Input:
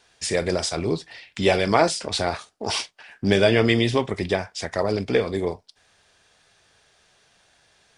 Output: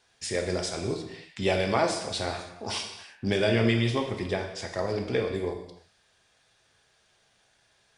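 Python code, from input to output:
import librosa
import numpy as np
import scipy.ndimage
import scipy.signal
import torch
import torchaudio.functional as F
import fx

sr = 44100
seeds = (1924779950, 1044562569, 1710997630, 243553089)

y = fx.rev_gated(x, sr, seeds[0], gate_ms=350, shape='falling', drr_db=3.5)
y = y * librosa.db_to_amplitude(-7.5)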